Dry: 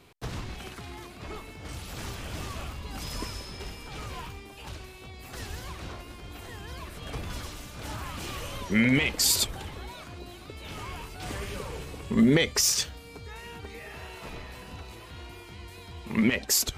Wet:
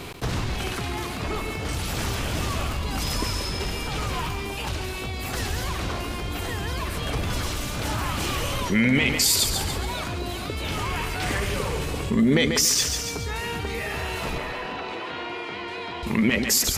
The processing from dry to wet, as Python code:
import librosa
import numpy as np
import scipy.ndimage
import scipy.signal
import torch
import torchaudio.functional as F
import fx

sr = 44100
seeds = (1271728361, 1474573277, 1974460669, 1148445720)

p1 = fx.peak_eq(x, sr, hz=1900.0, db=6.5, octaves=0.71, at=(10.93, 11.4))
p2 = fx.bandpass_edges(p1, sr, low_hz=320.0, high_hz=2900.0, at=(14.38, 16.03))
p3 = p2 + fx.echo_feedback(p2, sr, ms=141, feedback_pct=39, wet_db=-11.0, dry=0)
y = fx.env_flatten(p3, sr, amount_pct=50)